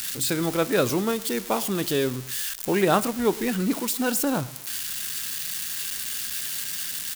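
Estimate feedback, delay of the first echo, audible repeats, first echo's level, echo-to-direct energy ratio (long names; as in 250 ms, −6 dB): 38%, 111 ms, 2, −20.5 dB, −20.0 dB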